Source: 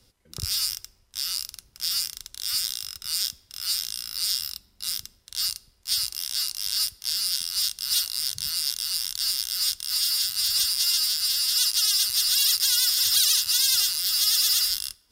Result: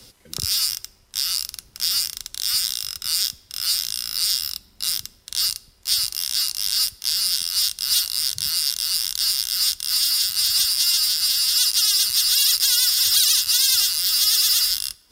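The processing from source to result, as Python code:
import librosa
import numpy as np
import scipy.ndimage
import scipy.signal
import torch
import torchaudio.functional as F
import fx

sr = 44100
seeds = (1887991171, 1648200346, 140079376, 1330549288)

y = fx.band_squash(x, sr, depth_pct=40)
y = F.gain(torch.from_numpy(y), 4.0).numpy()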